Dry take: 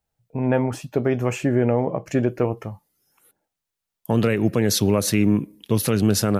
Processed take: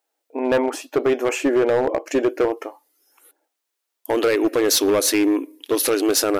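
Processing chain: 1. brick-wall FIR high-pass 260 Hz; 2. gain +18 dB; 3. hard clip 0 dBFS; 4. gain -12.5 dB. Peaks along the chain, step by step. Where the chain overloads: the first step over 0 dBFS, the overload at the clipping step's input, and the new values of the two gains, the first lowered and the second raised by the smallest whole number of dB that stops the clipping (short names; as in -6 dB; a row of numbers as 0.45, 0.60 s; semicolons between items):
-10.0, +8.0, 0.0, -12.5 dBFS; step 2, 8.0 dB; step 2 +10 dB, step 4 -4.5 dB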